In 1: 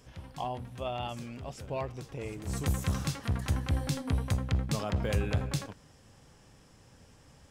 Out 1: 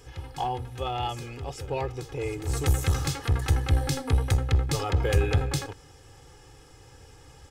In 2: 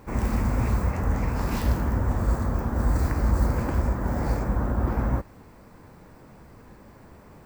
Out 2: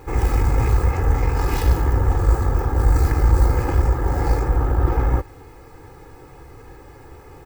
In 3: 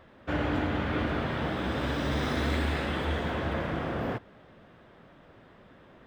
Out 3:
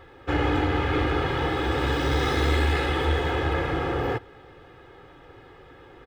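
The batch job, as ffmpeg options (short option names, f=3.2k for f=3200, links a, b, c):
-filter_complex "[0:a]aecho=1:1:2.4:0.9,asplit=2[a][b];[b]aeval=exprs='clip(val(0),-1,0.0299)':c=same,volume=-4dB[c];[a][c]amix=inputs=2:normalize=0"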